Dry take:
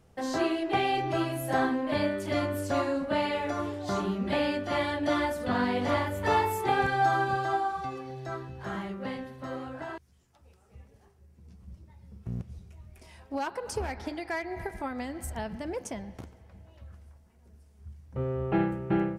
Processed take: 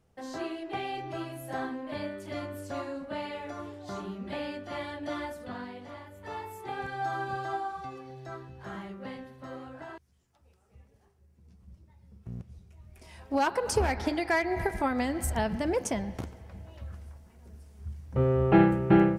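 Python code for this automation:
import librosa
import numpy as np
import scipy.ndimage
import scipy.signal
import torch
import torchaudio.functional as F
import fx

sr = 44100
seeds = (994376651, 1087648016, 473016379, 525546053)

y = fx.gain(x, sr, db=fx.line((5.33, -8.0), (5.93, -18.0), (7.4, -5.0), (12.68, -5.0), (13.44, 6.5)))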